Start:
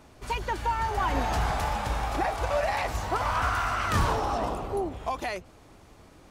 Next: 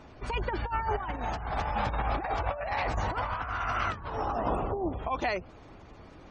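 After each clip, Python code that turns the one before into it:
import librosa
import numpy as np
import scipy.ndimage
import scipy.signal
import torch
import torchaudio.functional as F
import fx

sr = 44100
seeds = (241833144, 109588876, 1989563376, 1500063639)

y = fx.high_shelf(x, sr, hz=7000.0, db=-7.5)
y = fx.spec_gate(y, sr, threshold_db=-30, keep='strong')
y = fx.over_compress(y, sr, threshold_db=-30.0, ratio=-0.5)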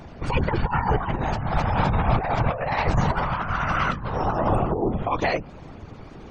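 y = fx.low_shelf(x, sr, hz=230.0, db=6.0)
y = fx.whisperise(y, sr, seeds[0])
y = y * 10.0 ** (6.0 / 20.0)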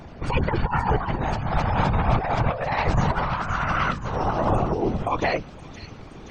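y = fx.echo_wet_highpass(x, sr, ms=523, feedback_pct=67, hz=4700.0, wet_db=-4.5)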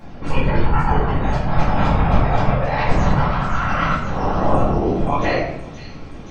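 y = fx.room_shoebox(x, sr, seeds[1], volume_m3=200.0, walls='mixed', distance_m=2.2)
y = y * 10.0 ** (-4.0 / 20.0)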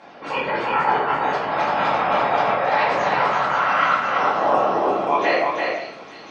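y = fx.bandpass_edges(x, sr, low_hz=520.0, high_hz=4900.0)
y = y + 10.0 ** (-4.0 / 20.0) * np.pad(y, (int(337 * sr / 1000.0), 0))[:len(y)]
y = y * 10.0 ** (2.5 / 20.0)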